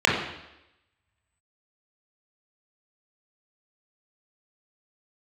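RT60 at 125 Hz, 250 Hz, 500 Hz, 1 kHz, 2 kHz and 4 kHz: 0.80, 0.90, 0.90, 0.90, 0.90, 0.90 s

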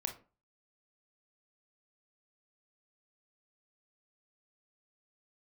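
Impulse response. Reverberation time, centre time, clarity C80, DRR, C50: 0.35 s, 13 ms, 18.0 dB, 4.5 dB, 11.0 dB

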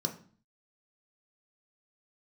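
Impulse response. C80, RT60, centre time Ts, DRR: 16.5 dB, 0.45 s, 13 ms, 3.0 dB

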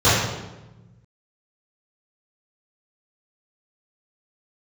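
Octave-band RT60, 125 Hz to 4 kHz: 2.0, 1.7, 1.1, 1.0, 0.85, 0.80 s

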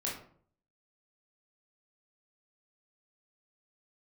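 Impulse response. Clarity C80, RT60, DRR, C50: 10.0 dB, 0.55 s, -5.0 dB, 4.5 dB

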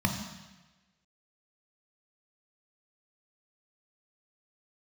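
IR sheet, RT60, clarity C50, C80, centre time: 1.2 s, 5.5 dB, 7.5 dB, 34 ms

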